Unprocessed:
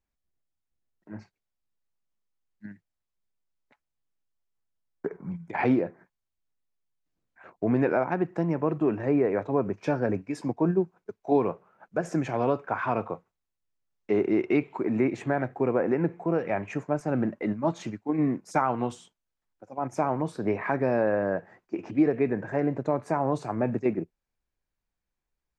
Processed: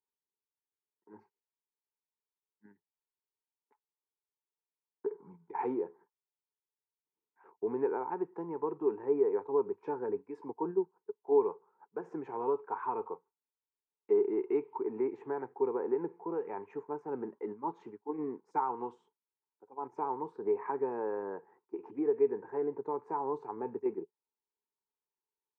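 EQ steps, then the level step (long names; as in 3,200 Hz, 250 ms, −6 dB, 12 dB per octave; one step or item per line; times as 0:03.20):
pair of resonant band-passes 620 Hz, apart 1.1 octaves
0.0 dB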